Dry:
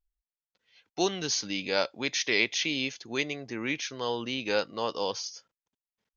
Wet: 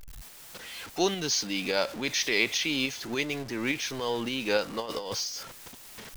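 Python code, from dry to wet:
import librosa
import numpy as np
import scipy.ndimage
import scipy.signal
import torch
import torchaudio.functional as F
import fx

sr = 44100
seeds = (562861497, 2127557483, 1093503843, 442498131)

y = x + 0.5 * 10.0 ** (-36.0 / 20.0) * np.sign(x)
y = fx.over_compress(y, sr, threshold_db=-32.0, ratio=-0.5, at=(4.8, 5.24))
y = fx.tremolo_shape(y, sr, shape='saw_up', hz=3.5, depth_pct=35)
y = y * librosa.db_to_amplitude(1.5)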